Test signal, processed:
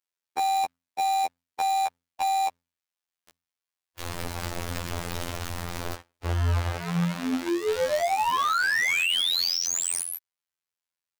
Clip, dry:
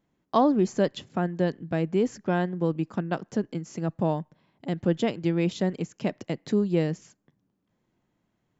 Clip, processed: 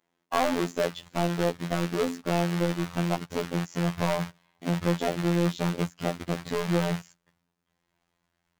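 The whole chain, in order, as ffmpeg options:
-filter_complex "[0:a]bandreject=f=50:t=h:w=6,bandreject=f=100:t=h:w=6,bandreject=f=150:t=h:w=6,bandreject=f=200:t=h:w=6,bandreject=f=250:t=h:w=6,bandreject=f=300:t=h:w=6,afwtdn=0.0355,asubboost=boost=8:cutoff=100,asplit=2[a][b];[b]acompressor=threshold=-36dB:ratio=10,volume=1dB[c];[a][c]amix=inputs=2:normalize=0,acrusher=bits=3:mode=log:mix=0:aa=0.000001,asplit=2[d][e];[e]highpass=f=720:p=1,volume=30dB,asoftclip=type=tanh:threshold=-6.5dB[f];[d][f]amix=inputs=2:normalize=0,lowpass=f=5.5k:p=1,volume=-6dB,afftfilt=real='hypot(re,im)*cos(PI*b)':imag='0':win_size=2048:overlap=0.75,volume=-8dB"

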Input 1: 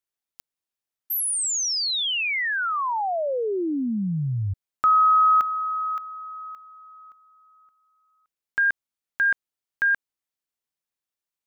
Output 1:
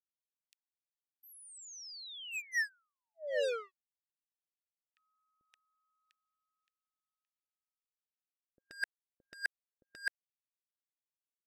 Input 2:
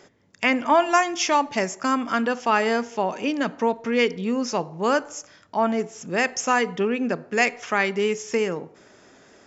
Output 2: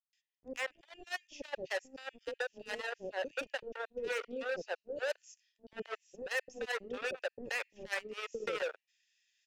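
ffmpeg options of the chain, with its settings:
-filter_complex "[0:a]highpass=f=330:p=1,areverse,acompressor=threshold=-28dB:ratio=12:attack=55:release=616:knee=1:detection=rms,areverse,asplit=3[a][b][c];[a]bandpass=f=530:t=q:w=8,volume=0dB[d];[b]bandpass=f=1.84k:t=q:w=8,volume=-6dB[e];[c]bandpass=f=2.48k:t=q:w=8,volume=-9dB[f];[d][e][f]amix=inputs=3:normalize=0,acrossover=split=3400[g][h];[g]acrusher=bits=5:mix=0:aa=0.5[i];[i][h]amix=inputs=2:normalize=0,acrossover=split=2700|6100[j][k][l];[j]acompressor=threshold=-36dB:ratio=4[m];[k]acompressor=threshold=-57dB:ratio=4[n];[l]acompressor=threshold=-59dB:ratio=4[o];[m][n][o]amix=inputs=3:normalize=0,acrossover=split=470[p][q];[q]adelay=130[r];[p][r]amix=inputs=2:normalize=0,volume=7.5dB"

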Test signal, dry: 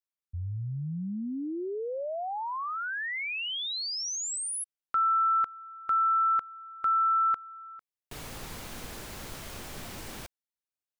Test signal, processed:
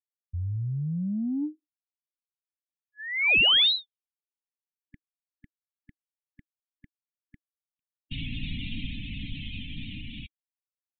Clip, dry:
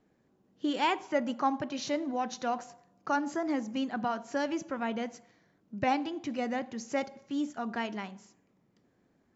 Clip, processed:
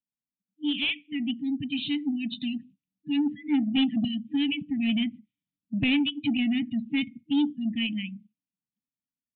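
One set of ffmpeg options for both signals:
-af "afftfilt=real='re*(1-between(b*sr/4096,310,1700))':imag='im*(1-between(b*sr/4096,310,1700))':win_size=4096:overlap=0.75,afftdn=nr=36:nf=-46,firequalizer=gain_entry='entry(310,0);entry(1500,-25);entry(2500,7)':delay=0.05:min_phase=1,dynaudnorm=f=490:g=9:m=8dB,aresample=8000,asoftclip=type=tanh:threshold=-21.5dB,aresample=44100,volume=4dB"

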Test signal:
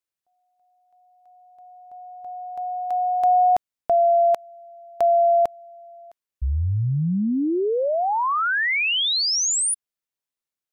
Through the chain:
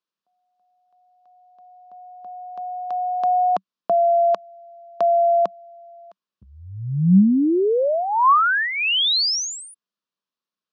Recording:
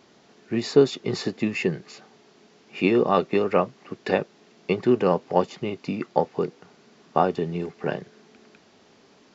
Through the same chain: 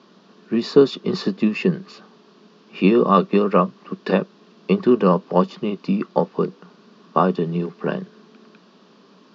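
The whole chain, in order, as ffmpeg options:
-af "highpass=f=160:w=0.5412,highpass=f=160:w=1.3066,equalizer=f=190:t=q:w=4:g=9,equalizer=f=770:t=q:w=4:g=-7,equalizer=f=1.1k:t=q:w=4:g=7,equalizer=f=2.1k:t=q:w=4:g=-9,lowpass=f=5.2k:w=0.5412,lowpass=f=5.2k:w=1.3066,volume=3.5dB"

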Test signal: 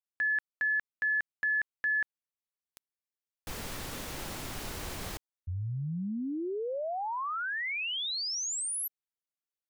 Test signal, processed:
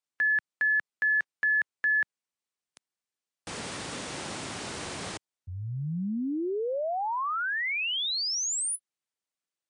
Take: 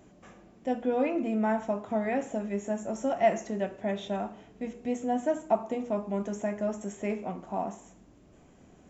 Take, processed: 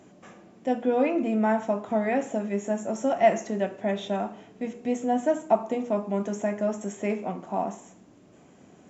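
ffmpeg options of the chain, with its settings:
-af "highpass=130,volume=4.5dB" -ar 22050 -c:a libmp3lame -b:a 96k

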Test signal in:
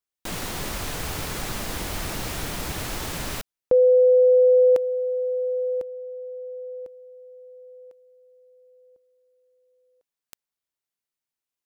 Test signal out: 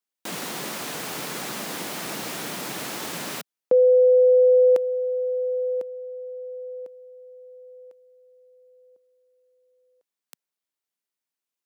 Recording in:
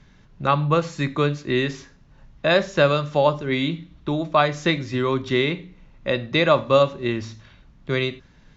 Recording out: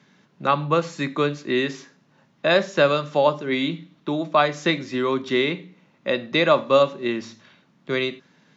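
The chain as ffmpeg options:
-af "highpass=f=170:w=0.5412,highpass=f=170:w=1.3066"

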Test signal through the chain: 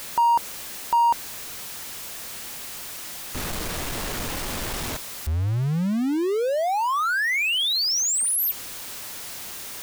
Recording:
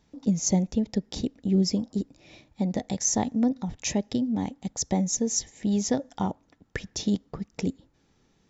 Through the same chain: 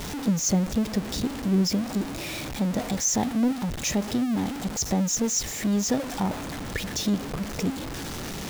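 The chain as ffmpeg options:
-af "aeval=exprs='val(0)+0.5*0.0473*sgn(val(0))':c=same,volume=-1.5dB"

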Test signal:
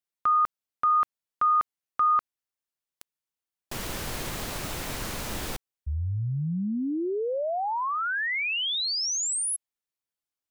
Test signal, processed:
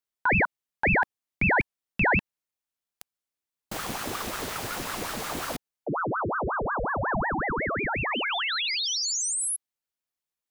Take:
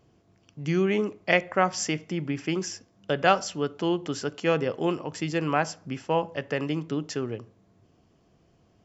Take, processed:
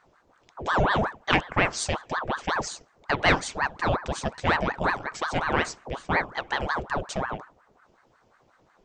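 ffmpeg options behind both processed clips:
-af "acontrast=37,equalizer=f=410:w=3.5:g=2,aeval=exprs='val(0)*sin(2*PI*820*n/s+820*0.75/5.5*sin(2*PI*5.5*n/s))':c=same,volume=-2.5dB"

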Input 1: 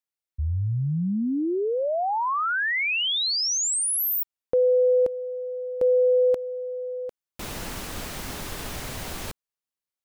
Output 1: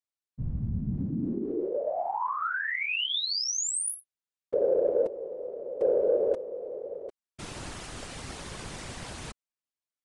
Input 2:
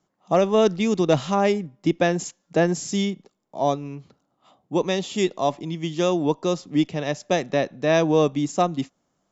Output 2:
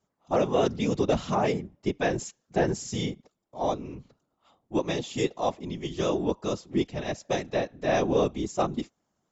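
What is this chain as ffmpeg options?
-af "aresample=22050,aresample=44100,afftfilt=real='hypot(re,im)*cos(2*PI*random(0))':imag='hypot(re,im)*sin(2*PI*random(1))':win_size=512:overlap=0.75,aeval=exprs='0.316*(cos(1*acos(clip(val(0)/0.316,-1,1)))-cos(1*PI/2))+0.00501*(cos(5*acos(clip(val(0)/0.316,-1,1)))-cos(5*PI/2))':c=same"

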